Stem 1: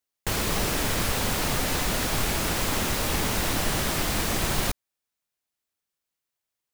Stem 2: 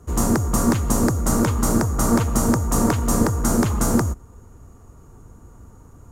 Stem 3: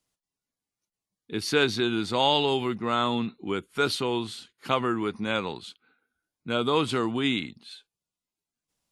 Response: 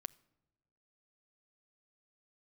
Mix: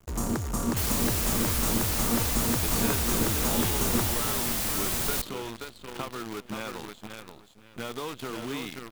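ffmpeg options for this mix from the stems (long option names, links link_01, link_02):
-filter_complex "[0:a]highshelf=frequency=6200:gain=11.5,adelay=500,volume=-7.5dB[link_01];[1:a]volume=-10dB[link_02];[2:a]lowpass=3900,acompressor=threshold=-30dB:ratio=6,aeval=exprs='sgn(val(0))*max(abs(val(0))-0.00251,0)':channel_layout=same,adelay=1300,volume=-3dB,asplit=3[link_03][link_04][link_05];[link_04]volume=-17dB[link_06];[link_05]volume=-4.5dB[link_07];[3:a]atrim=start_sample=2205[link_08];[link_06][link_08]afir=irnorm=-1:irlink=0[link_09];[link_07]aecho=0:1:529|1058|1587|2116:1|0.3|0.09|0.027[link_10];[link_01][link_02][link_03][link_09][link_10]amix=inputs=5:normalize=0,acrusher=bits=7:dc=4:mix=0:aa=0.000001"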